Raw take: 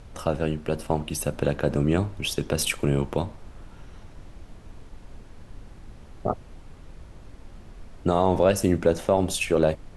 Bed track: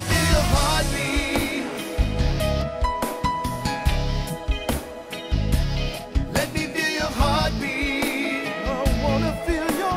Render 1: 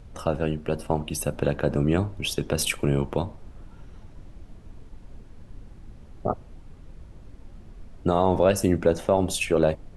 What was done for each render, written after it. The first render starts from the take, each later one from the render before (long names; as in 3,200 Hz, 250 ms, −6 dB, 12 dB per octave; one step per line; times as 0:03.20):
broadband denoise 6 dB, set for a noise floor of −47 dBFS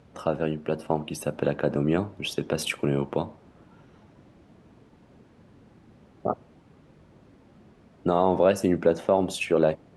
high-pass filter 160 Hz 12 dB per octave
high-shelf EQ 5,400 Hz −10.5 dB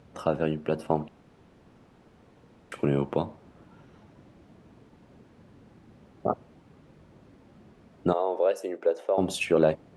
0:01.08–0:02.72: fill with room tone
0:08.13–0:09.18: four-pole ladder high-pass 380 Hz, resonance 45%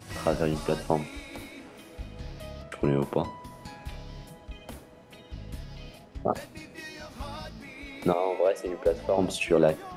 mix in bed track −18.5 dB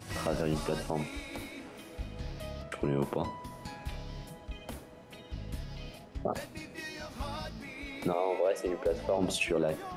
brickwall limiter −19.5 dBFS, peak gain reduction 11 dB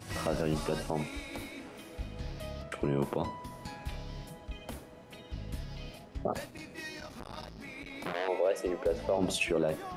0:06.50–0:08.28: saturating transformer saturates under 1,600 Hz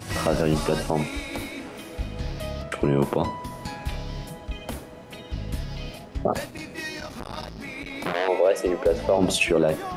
level +9 dB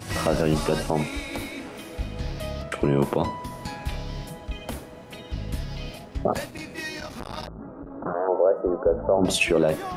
0:07.47–0:09.25: elliptic low-pass filter 1,400 Hz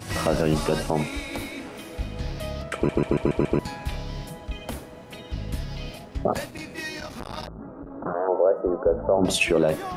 0:02.75: stutter in place 0.14 s, 6 plays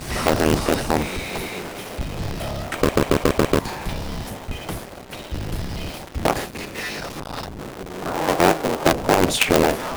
sub-harmonics by changed cycles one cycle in 3, inverted
in parallel at −9 dB: log-companded quantiser 2 bits